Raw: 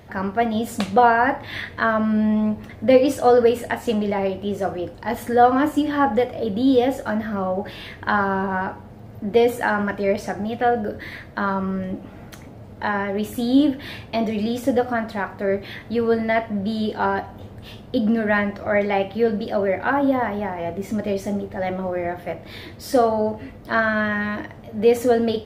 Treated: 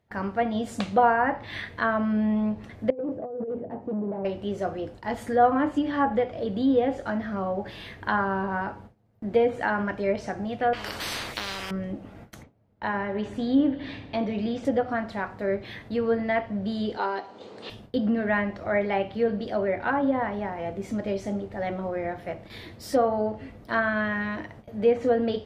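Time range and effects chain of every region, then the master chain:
0:02.90–0:04.25: compressor whose output falls as the input rises −19 dBFS, ratio −0.5 + gain into a clipping stage and back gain 21.5 dB + flat-topped band-pass 280 Hz, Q 0.58
0:10.73–0:11.71: high-shelf EQ 5,500 Hz +6 dB + every bin compressed towards the loudest bin 10 to 1
0:12.43–0:14.65: high-frequency loss of the air 97 metres + echo machine with several playback heads 82 ms, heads first and second, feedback 49%, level −20 dB
0:16.97–0:17.70: loudspeaker in its box 380–7,800 Hz, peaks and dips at 430 Hz +4 dB, 690 Hz −5 dB, 1,700 Hz −5 dB, 4,300 Hz +8 dB + multiband upward and downward compressor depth 70%
whole clip: noise gate with hold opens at −30 dBFS; treble cut that deepens with the level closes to 2,300 Hz, closed at −13 dBFS; level −5 dB

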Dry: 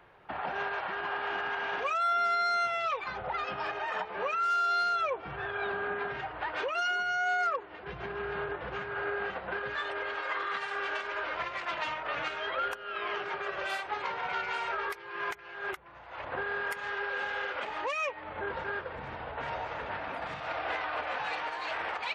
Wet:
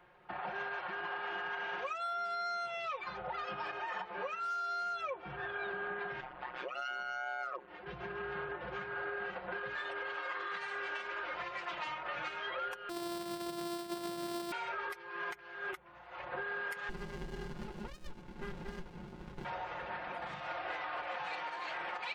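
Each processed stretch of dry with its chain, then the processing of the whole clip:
0:06.20–0:07.68: high-shelf EQ 8,800 Hz −10.5 dB + amplitude modulation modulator 130 Hz, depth 100%
0:12.89–0:14.52: samples sorted by size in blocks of 128 samples + high-pass filter 71 Hz
0:16.89–0:19.45: high-frequency loss of the air 240 metres + comb filter 4.9 ms, depth 81% + windowed peak hold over 65 samples
whole clip: comb filter 5.6 ms, depth 61%; downward compressor, threshold −29 dBFS; level −6 dB

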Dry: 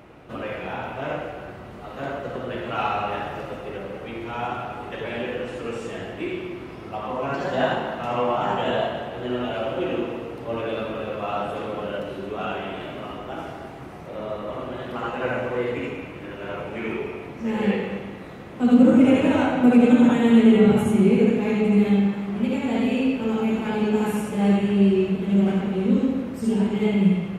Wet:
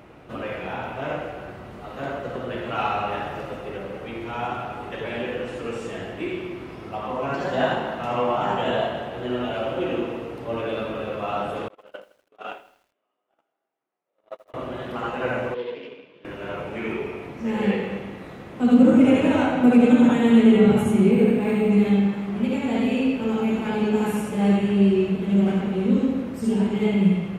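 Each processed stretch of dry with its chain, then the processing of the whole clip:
0:11.68–0:14.54: high-pass filter 410 Hz + noise gate −29 dBFS, range −43 dB + feedback echo at a low word length 81 ms, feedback 55%, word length 9 bits, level −14.5 dB
0:15.54–0:16.25: tube saturation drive 24 dB, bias 0.75 + loudspeaker in its box 260–4,800 Hz, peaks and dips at 310 Hz −5 dB, 460 Hz +5 dB, 780 Hz −10 dB, 1,300 Hz −8 dB, 2,000 Hz −6 dB, 3,300 Hz +7 dB + expander for the loud parts, over −42 dBFS
0:21.11–0:21.71: double-tracking delay 35 ms −11 dB + linearly interpolated sample-rate reduction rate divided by 4×
whole clip: no processing

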